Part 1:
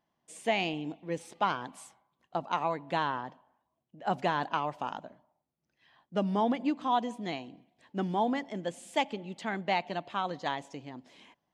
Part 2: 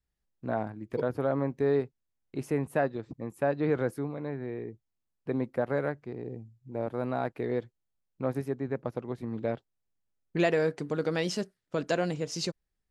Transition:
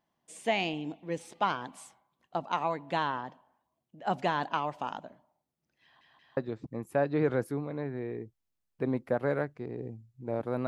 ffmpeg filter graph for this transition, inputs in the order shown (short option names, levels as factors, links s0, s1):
-filter_complex "[0:a]apad=whole_dur=10.67,atrim=end=10.67,asplit=3[s0][s1][s2];[s0]atrim=end=6.012[s3];[s1]atrim=start=5.828:end=6.012[s4];[s2]atrim=start=5.828:end=6.012[s5];[1:a]atrim=start=2.838:end=7.14[s6];[s3][s4]acrossfade=d=0.004:c1=hsin:c2=hsin[s7];[s7][s5]acrossfade=d=0.004:c1=hsin:c2=hsin[s8];[s8][s6]acrossfade=d=0.004:c1=hsin:c2=hsin"